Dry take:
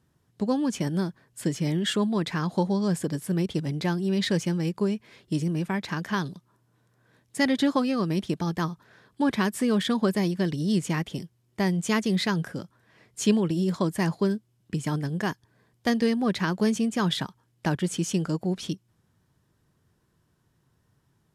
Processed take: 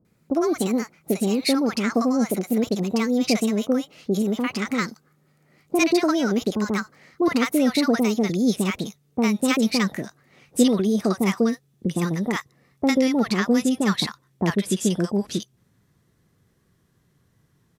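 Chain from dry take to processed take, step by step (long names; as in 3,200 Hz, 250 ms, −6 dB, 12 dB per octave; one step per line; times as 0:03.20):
gliding playback speed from 133% → 107%
multiband delay without the direct sound lows, highs 50 ms, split 870 Hz
level +4.5 dB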